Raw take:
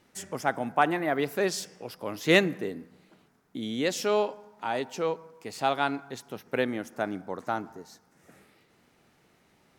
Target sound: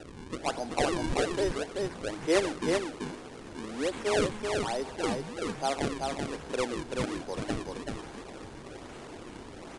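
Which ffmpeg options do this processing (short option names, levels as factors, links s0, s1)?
-filter_complex "[0:a]aeval=exprs='val(0)+0.5*0.0237*sgn(val(0))':c=same,highpass=f=290:w=0.5412,highpass=f=290:w=1.3066,tiltshelf=f=1300:g=5.5,acrusher=samples=39:mix=1:aa=0.000001:lfo=1:lforange=62.4:lforate=1.2,asplit=2[s0][s1];[s1]aecho=0:1:383:0.668[s2];[s0][s2]amix=inputs=2:normalize=0,aresample=22050,aresample=44100,volume=0.422"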